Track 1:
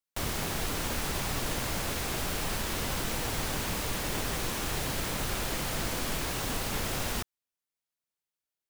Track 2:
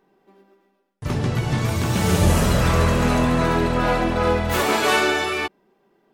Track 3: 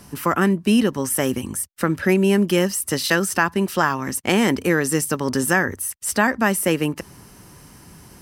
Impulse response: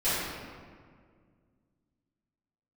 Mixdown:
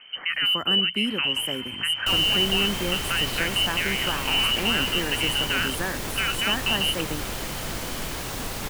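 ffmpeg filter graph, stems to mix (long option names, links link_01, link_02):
-filter_complex "[0:a]adelay=1900,volume=1dB[link_01];[1:a]lowpass=7800,volume=25dB,asoftclip=hard,volume=-25dB,volume=-9dB,asplit=2[link_02][link_03];[link_03]volume=-17dB[link_04];[2:a]equalizer=frequency=5900:width_type=o:width=0.33:gain=-12.5,volume=-1.5dB,asplit=2[link_05][link_06];[link_06]volume=-10.5dB[link_07];[link_02][link_05]amix=inputs=2:normalize=0,lowpass=frequency=2700:width_type=q:width=0.5098,lowpass=frequency=2700:width_type=q:width=0.6013,lowpass=frequency=2700:width_type=q:width=0.9,lowpass=frequency=2700:width_type=q:width=2.563,afreqshift=-3200,alimiter=limit=-16dB:level=0:latency=1:release=67,volume=0dB[link_08];[link_04][link_07]amix=inputs=2:normalize=0,aecho=0:1:293:1[link_09];[link_01][link_08][link_09]amix=inputs=3:normalize=0"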